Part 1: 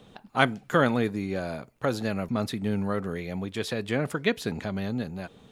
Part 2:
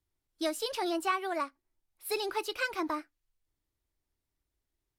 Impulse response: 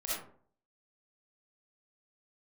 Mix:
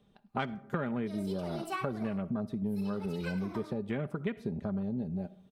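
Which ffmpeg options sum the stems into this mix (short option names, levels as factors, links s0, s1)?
-filter_complex "[0:a]afwtdn=0.02,lowshelf=f=290:g=7,aecho=1:1:5:0.42,volume=0.794,asplit=3[s0][s1][s2];[s1]volume=0.0794[s3];[1:a]adelay=650,volume=0.562,asplit=2[s4][s5];[s5]volume=0.335[s6];[s2]apad=whole_len=248619[s7];[s4][s7]sidechaincompress=threshold=0.0316:ratio=8:attack=16:release=390[s8];[2:a]atrim=start_sample=2205[s9];[s3][s6]amix=inputs=2:normalize=0[s10];[s10][s9]afir=irnorm=-1:irlink=0[s11];[s0][s8][s11]amix=inputs=3:normalize=0,bandreject=f=7000:w=11,acompressor=threshold=0.0282:ratio=6"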